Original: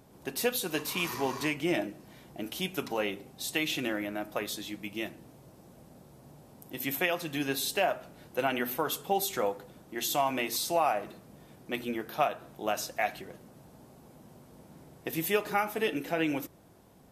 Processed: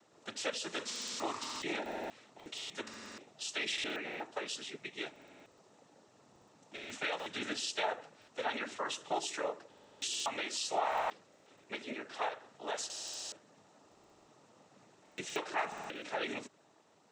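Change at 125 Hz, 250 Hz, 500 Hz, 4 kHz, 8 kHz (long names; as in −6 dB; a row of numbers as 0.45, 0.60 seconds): −16.5, −12.0, −9.0, −2.5, −4.0 decibels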